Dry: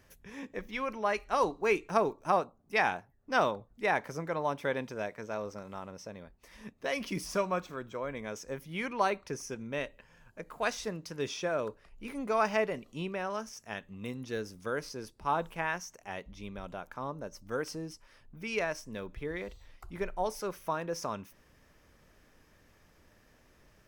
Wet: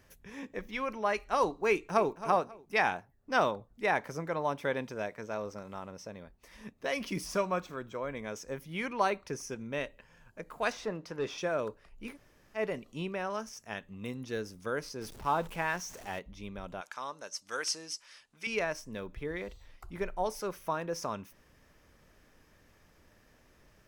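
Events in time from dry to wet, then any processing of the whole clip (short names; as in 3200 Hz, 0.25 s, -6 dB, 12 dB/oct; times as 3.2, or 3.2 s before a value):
1.7–2.11 echo throw 0.27 s, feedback 30%, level -13.5 dB
10.72–11.38 overdrive pedal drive 15 dB, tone 1000 Hz, clips at -23 dBFS
12.13–12.59 room tone, crossfade 0.10 s
15.01–16.19 zero-crossing step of -44.5 dBFS
16.81–18.47 weighting filter ITU-R 468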